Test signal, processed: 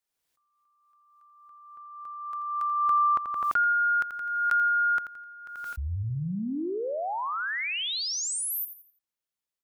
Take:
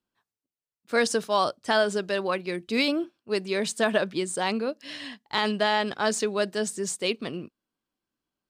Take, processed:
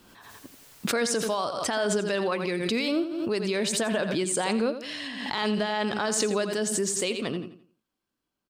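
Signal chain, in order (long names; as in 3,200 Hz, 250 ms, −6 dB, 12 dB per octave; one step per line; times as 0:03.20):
brickwall limiter −20.5 dBFS
repeating echo 85 ms, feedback 33%, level −11 dB
background raised ahead of every attack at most 35 dB per second
level +2 dB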